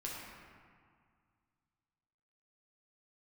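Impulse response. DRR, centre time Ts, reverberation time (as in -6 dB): -5.0 dB, 0.113 s, 2.0 s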